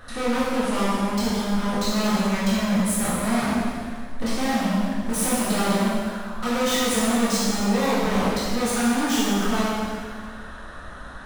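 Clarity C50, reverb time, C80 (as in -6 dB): -3.0 dB, 1.9 s, -0.5 dB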